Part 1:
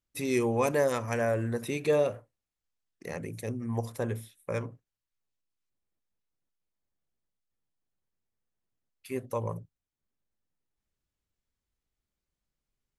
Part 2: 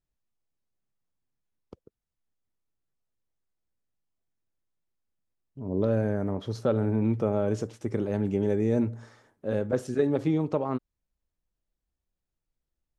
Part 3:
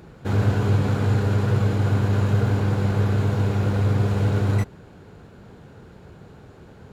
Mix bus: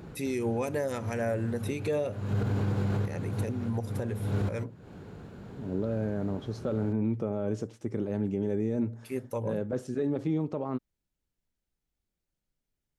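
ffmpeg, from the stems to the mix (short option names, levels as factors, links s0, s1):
-filter_complex "[0:a]bandreject=f=1100:w=6.3,volume=0.75,asplit=2[s0][s1];[1:a]alimiter=limit=0.126:level=0:latency=1:release=11,volume=0.531[s2];[2:a]volume=0.75[s3];[s1]apad=whole_len=305385[s4];[s3][s4]sidechaincompress=threshold=0.00398:ratio=16:attack=8.8:release=254[s5];[s0][s2][s5]amix=inputs=3:normalize=0,equalizer=f=210:t=o:w=2.1:g=4,alimiter=limit=0.0891:level=0:latency=1:release=142"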